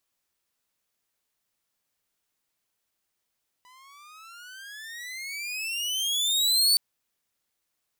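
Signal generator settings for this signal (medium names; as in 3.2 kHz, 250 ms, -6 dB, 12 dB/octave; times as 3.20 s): gliding synth tone saw, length 3.12 s, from 987 Hz, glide +26.5 st, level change +35 dB, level -14 dB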